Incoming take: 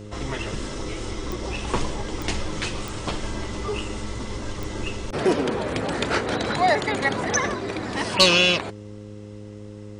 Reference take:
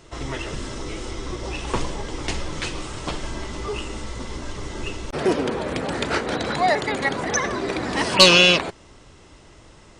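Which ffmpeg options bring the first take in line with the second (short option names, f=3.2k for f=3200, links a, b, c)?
-af "adeclick=t=4,bandreject=f=104.2:t=h:w=4,bandreject=f=208.4:t=h:w=4,bandreject=f=312.6:t=h:w=4,bandreject=f=416.8:t=h:w=4,bandreject=f=521:t=h:w=4,asetnsamples=n=441:p=0,asendcmd='7.54 volume volume 4dB',volume=0dB"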